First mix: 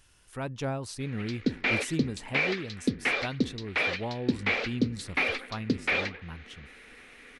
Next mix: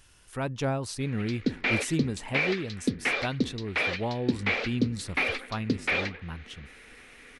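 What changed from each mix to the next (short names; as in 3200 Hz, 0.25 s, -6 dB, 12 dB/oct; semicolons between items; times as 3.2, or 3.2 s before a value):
speech +3.5 dB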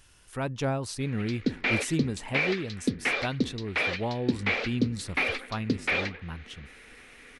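none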